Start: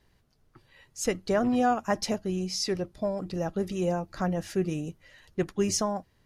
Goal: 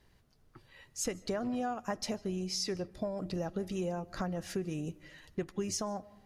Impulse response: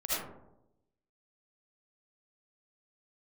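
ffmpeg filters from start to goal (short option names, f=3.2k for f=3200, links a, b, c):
-filter_complex "[0:a]acompressor=threshold=-32dB:ratio=6,asplit=2[a][b];[1:a]atrim=start_sample=2205,adelay=74[c];[b][c]afir=irnorm=-1:irlink=0,volume=-28.5dB[d];[a][d]amix=inputs=2:normalize=0"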